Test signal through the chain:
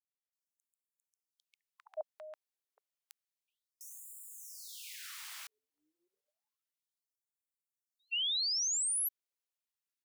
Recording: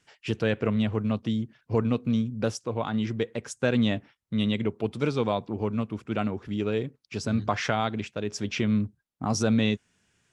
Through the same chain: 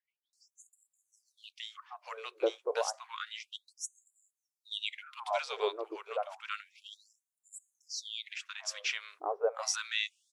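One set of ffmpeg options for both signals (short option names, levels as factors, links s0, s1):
-filter_complex "[0:a]acrossover=split=1100[s0][s1];[s1]adelay=330[s2];[s0][s2]amix=inputs=2:normalize=0,afftfilt=real='re*gte(b*sr/1024,330*pow(7000/330,0.5+0.5*sin(2*PI*0.3*pts/sr)))':imag='im*gte(b*sr/1024,330*pow(7000/330,0.5+0.5*sin(2*PI*0.3*pts/sr)))':win_size=1024:overlap=0.75"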